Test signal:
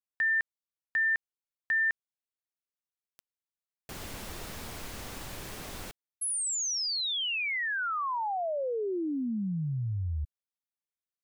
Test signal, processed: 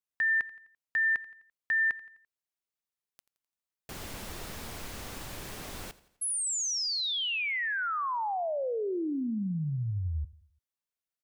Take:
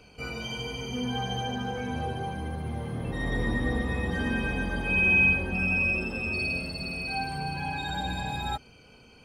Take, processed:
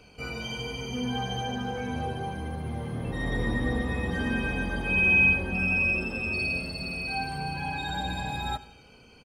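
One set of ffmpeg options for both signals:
-af "aecho=1:1:85|170|255|340:0.112|0.0539|0.0259|0.0124"

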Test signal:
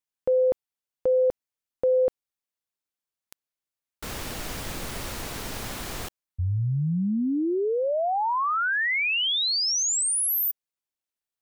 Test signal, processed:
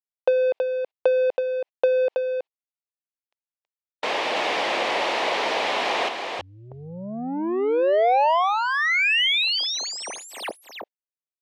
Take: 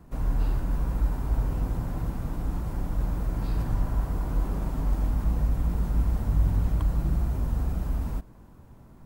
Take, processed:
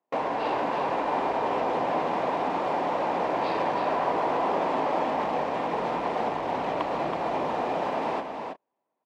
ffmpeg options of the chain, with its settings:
-filter_complex "[0:a]agate=range=-40dB:threshold=-36dB:ratio=16:release=72:detection=rms,asplit=2[a][b];[b]highpass=f=720:p=1,volume=25dB,asoftclip=type=tanh:threshold=-11.5dB[c];[a][c]amix=inputs=2:normalize=0,lowpass=f=1.4k:p=1,volume=-6dB,acompressor=threshold=-25dB:ratio=6:attack=73:release=111:knee=6:detection=peak,highpass=590,lowpass=3.2k,equalizer=f=1.4k:t=o:w=0.77:g=-13,asplit=2[d][e];[e]aecho=0:1:325:0.531[f];[d][f]amix=inputs=2:normalize=0,volume=9dB"

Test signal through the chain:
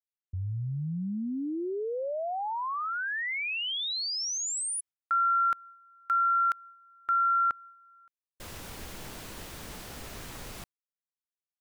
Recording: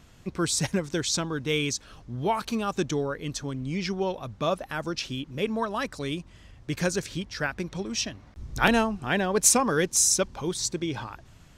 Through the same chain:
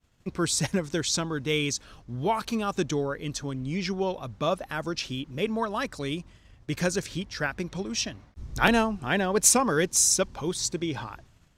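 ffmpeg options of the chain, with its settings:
-af "agate=range=-33dB:threshold=-44dB:ratio=3:detection=peak"

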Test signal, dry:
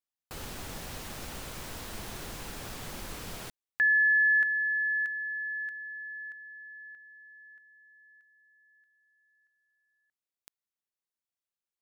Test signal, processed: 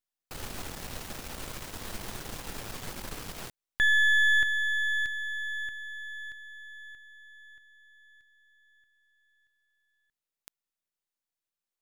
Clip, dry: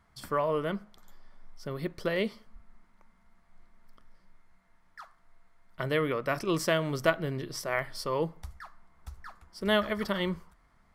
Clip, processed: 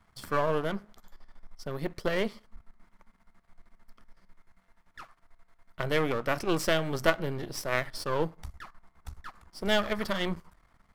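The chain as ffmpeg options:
-af "aeval=exprs='if(lt(val(0),0),0.251*val(0),val(0))':c=same,volume=4dB"

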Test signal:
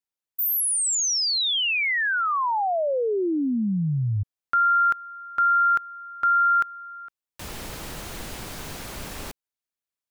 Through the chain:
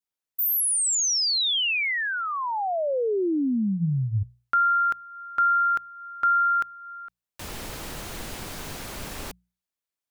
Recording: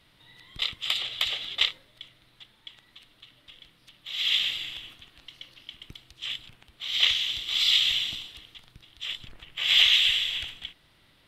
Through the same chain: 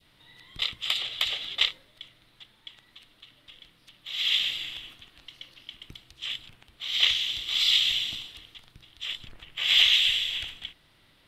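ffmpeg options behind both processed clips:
-af "bandreject=f=60:t=h:w=6,bandreject=f=120:t=h:w=6,bandreject=f=180:t=h:w=6,adynamicequalizer=threshold=0.02:dfrequency=1300:dqfactor=0.89:tfrequency=1300:tqfactor=0.89:attack=5:release=100:ratio=0.375:range=3:mode=cutabove:tftype=bell"

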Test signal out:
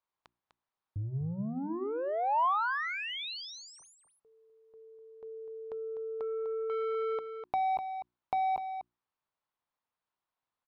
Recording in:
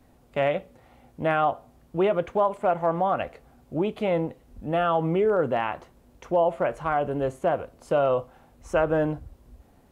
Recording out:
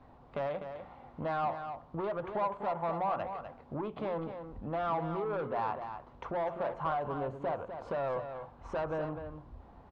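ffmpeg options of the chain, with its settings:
-af "asoftclip=type=tanh:threshold=-22.5dB,acompressor=threshold=-40dB:ratio=2.5,bandreject=f=60:t=h:w=6,bandreject=f=120:t=h:w=6,bandreject=f=180:t=h:w=6,bandreject=f=240:t=h:w=6,bandreject=f=300:t=h:w=6,bandreject=f=360:t=h:w=6,adynamicsmooth=sensitivity=0.5:basefreq=2.5k,equalizer=f=125:t=o:w=1:g=3,equalizer=f=1k:t=o:w=1:g=11,equalizer=f=4k:t=o:w=1:g=6,aecho=1:1:250:0.376,volume=-1dB"

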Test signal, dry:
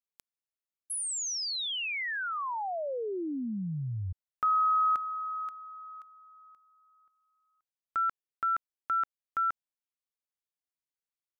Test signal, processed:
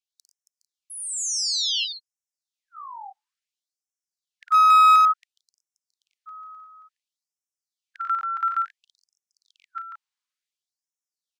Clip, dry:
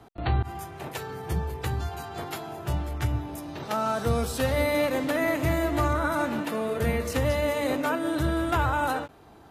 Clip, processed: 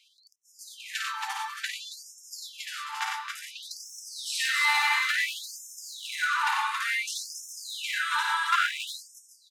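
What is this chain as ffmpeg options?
-filter_complex "[0:a]highpass=f=56:w=0.5412,highpass=f=56:w=1.3066,acrossover=split=320 7600:gain=0.251 1 0.1[a][b][c];[a][b][c]amix=inputs=3:normalize=0,asplit=2[d][e];[e]aecho=0:1:53|93|115|274|416|449:0.596|0.562|0.398|0.562|0.282|0.15[f];[d][f]amix=inputs=2:normalize=0,aeval=exprs='clip(val(0),-1,0.112)':c=same,highshelf=f=8.6k:g=5,afftfilt=real='re*gte(b*sr/1024,760*pow(5300/760,0.5+0.5*sin(2*PI*0.57*pts/sr)))':imag='im*gte(b*sr/1024,760*pow(5300/760,0.5+0.5*sin(2*PI*0.57*pts/sr)))':win_size=1024:overlap=0.75,volume=5.5dB"

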